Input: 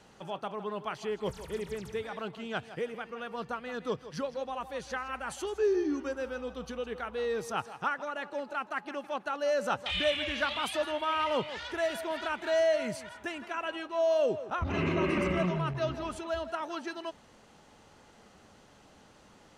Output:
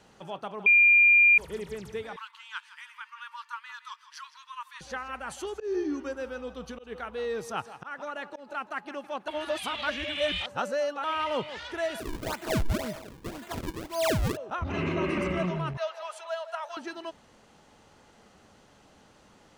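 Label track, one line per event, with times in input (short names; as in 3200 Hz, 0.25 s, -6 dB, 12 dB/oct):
0.660000	1.380000	bleep 2400 Hz -15 dBFS
2.160000	4.810000	brick-wall FIR high-pass 870 Hz
5.520000	8.550000	auto swell 0.156 s
9.280000	11.040000	reverse
12.000000	14.370000	decimation with a swept rate 38×, swing 160% 1.9 Hz
15.770000	16.770000	steep high-pass 530 Hz 48 dB/oct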